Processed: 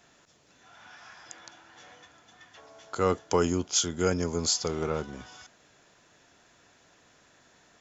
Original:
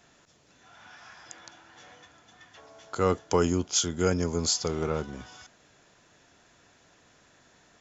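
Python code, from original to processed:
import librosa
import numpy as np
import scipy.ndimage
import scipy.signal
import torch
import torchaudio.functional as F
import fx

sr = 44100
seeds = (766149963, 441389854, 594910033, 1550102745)

y = fx.low_shelf(x, sr, hz=200.0, db=-3.5)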